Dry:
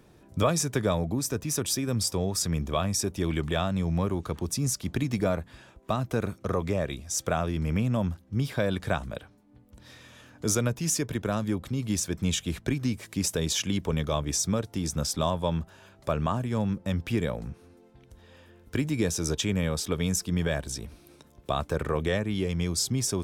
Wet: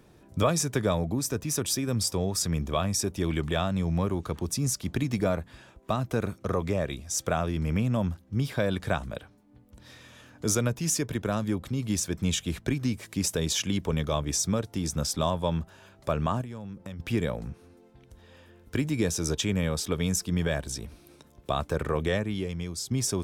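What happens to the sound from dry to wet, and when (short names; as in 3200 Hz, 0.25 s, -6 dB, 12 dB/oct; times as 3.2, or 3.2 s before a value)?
16.41–17 compressor 10:1, threshold -35 dBFS
22.2–22.91 fade out quadratic, to -7.5 dB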